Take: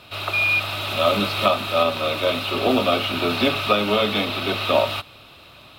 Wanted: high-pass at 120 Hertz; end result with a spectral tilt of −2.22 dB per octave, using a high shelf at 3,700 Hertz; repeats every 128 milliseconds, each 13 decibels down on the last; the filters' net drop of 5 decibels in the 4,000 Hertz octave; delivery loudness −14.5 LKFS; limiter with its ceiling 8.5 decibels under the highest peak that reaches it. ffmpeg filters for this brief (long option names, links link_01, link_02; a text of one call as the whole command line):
ffmpeg -i in.wav -af "highpass=120,highshelf=frequency=3700:gain=4.5,equalizer=frequency=4000:width_type=o:gain=-9,alimiter=limit=-13.5dB:level=0:latency=1,aecho=1:1:128|256|384:0.224|0.0493|0.0108,volume=9dB" out.wav